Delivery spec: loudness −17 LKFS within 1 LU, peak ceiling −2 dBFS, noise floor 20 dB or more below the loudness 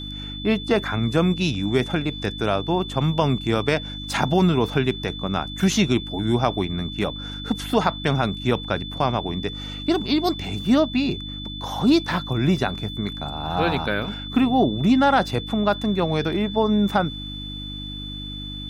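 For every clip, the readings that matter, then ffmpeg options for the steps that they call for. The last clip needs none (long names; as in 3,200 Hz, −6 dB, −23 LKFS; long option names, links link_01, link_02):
mains hum 50 Hz; hum harmonics up to 300 Hz; level of the hum −33 dBFS; interfering tone 3,500 Hz; level of the tone −34 dBFS; integrated loudness −23.0 LKFS; sample peak −4.0 dBFS; target loudness −17.0 LKFS
→ -af "bandreject=frequency=50:width_type=h:width=4,bandreject=frequency=100:width_type=h:width=4,bandreject=frequency=150:width_type=h:width=4,bandreject=frequency=200:width_type=h:width=4,bandreject=frequency=250:width_type=h:width=4,bandreject=frequency=300:width_type=h:width=4"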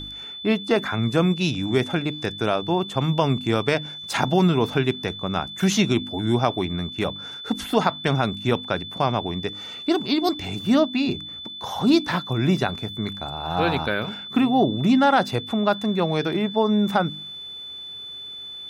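mains hum none found; interfering tone 3,500 Hz; level of the tone −34 dBFS
→ -af "bandreject=frequency=3500:width=30"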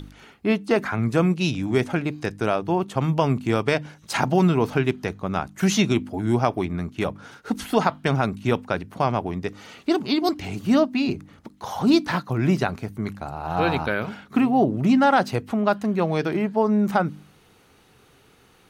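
interfering tone none found; integrated loudness −23.0 LKFS; sample peak −4.0 dBFS; target loudness −17.0 LKFS
→ -af "volume=6dB,alimiter=limit=-2dB:level=0:latency=1"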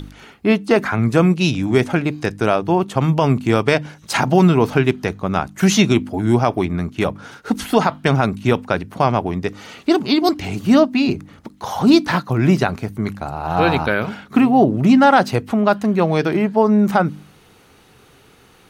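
integrated loudness −17.5 LKFS; sample peak −2.0 dBFS; background noise floor −50 dBFS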